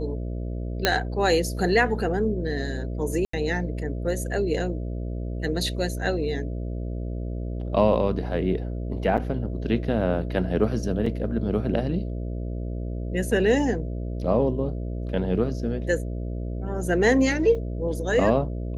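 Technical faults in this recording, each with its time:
mains buzz 60 Hz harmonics 11 −30 dBFS
0:00.85: click −4 dBFS
0:03.25–0:03.33: drop-out 84 ms
0:09.17–0:09.18: drop-out 7.7 ms
0:11.06: drop-out 4.3 ms
0:17.55: drop-out 2.5 ms

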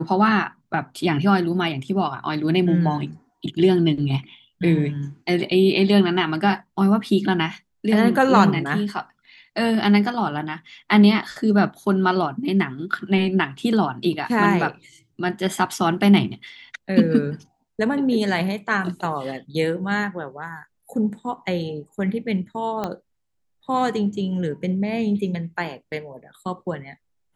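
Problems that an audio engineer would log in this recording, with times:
0:22.84: click −13 dBFS

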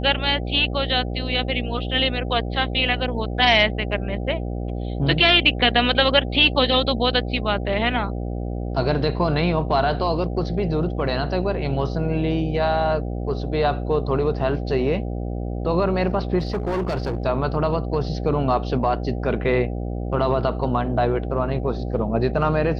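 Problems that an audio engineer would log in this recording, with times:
mains buzz 60 Hz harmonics 13 −27 dBFS
0:16.38–0:17.26: clipping −20 dBFS

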